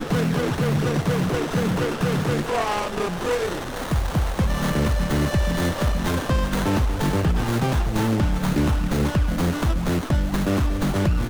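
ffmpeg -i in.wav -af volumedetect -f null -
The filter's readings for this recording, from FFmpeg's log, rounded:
mean_volume: -21.5 dB
max_volume: -11.0 dB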